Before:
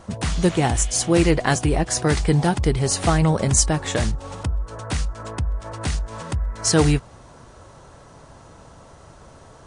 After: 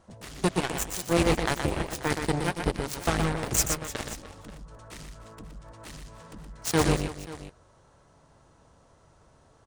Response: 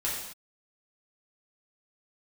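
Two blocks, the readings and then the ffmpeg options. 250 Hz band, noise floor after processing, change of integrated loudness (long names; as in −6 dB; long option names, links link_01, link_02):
−8.5 dB, −60 dBFS, −6.5 dB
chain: -af "aeval=exprs='0.631*(cos(1*acos(clip(val(0)/0.631,-1,1)))-cos(1*PI/2))+0.126*(cos(7*acos(clip(val(0)/0.631,-1,1)))-cos(7*PI/2))':channel_layout=same,aecho=1:1:121|300|534:0.501|0.158|0.133,volume=-6.5dB"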